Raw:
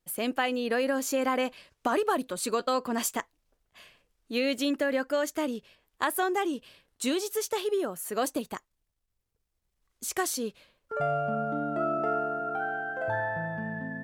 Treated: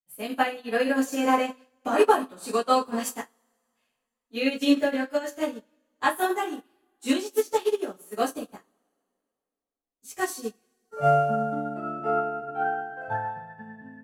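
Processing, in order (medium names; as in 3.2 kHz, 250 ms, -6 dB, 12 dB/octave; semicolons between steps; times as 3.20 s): two-slope reverb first 0.31 s, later 2.7 s, from -21 dB, DRR -8 dB; upward expansion 2.5:1, over -35 dBFS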